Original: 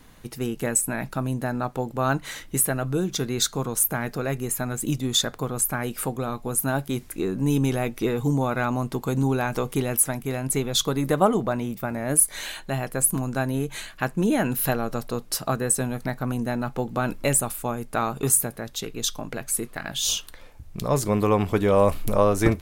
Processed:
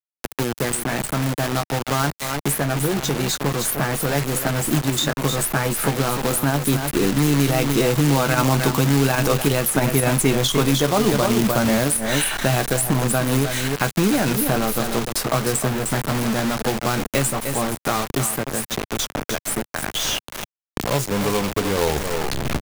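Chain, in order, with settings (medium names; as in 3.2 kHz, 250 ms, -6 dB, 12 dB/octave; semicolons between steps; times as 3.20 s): tape stop on the ending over 0.93 s; Doppler pass-by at 9.86 s, 11 m/s, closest 3.4 m; doubling 14 ms -8 dB; on a send: delay 303 ms -10.5 dB; on the sum: dynamic bell 2.9 kHz, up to +4 dB, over -58 dBFS, Q 3.8; reverse; compression 16:1, threshold -35 dBFS, peak gain reduction 20 dB; reverse; companded quantiser 4-bit; loudness maximiser +33.5 dB; three bands compressed up and down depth 70%; trim -7.5 dB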